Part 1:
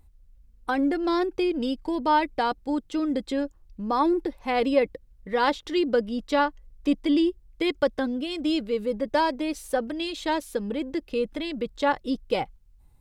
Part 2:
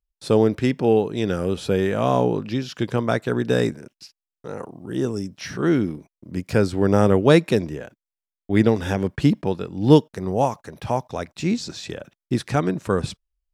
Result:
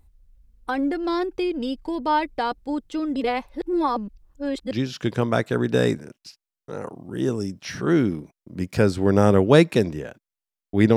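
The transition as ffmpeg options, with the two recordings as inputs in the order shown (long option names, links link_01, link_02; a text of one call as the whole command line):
ffmpeg -i cue0.wav -i cue1.wav -filter_complex "[0:a]apad=whole_dur=10.96,atrim=end=10.96,asplit=2[link_01][link_02];[link_01]atrim=end=3.162[link_03];[link_02]atrim=start=3.158:end=4.712,asetpts=PTS-STARTPTS,areverse[link_04];[1:a]atrim=start=2.468:end=8.72[link_05];[link_03][link_04]acrossfade=duration=0.004:curve1=hsin:curve2=hsin[link_06];[link_06][link_05]acrossfade=duration=0.004:curve1=hsin:curve2=hsin" out.wav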